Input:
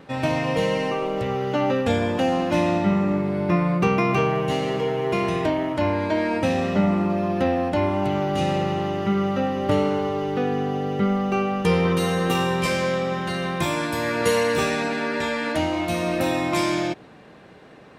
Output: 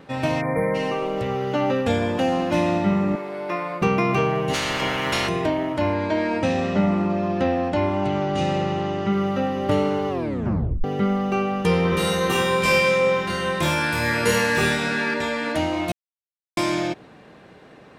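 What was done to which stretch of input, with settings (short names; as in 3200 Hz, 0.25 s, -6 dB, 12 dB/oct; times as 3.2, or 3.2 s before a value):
0.41–0.75 spectral delete 2400–9200 Hz
3.15–3.82 HPF 480 Hz
4.53–5.27 spectral limiter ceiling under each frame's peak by 25 dB
5.94–9.13 LPF 8400 Hz 24 dB/oct
10.09 tape stop 0.75 s
11.9–15.14 flutter echo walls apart 4.3 m, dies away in 0.66 s
15.92–16.57 mute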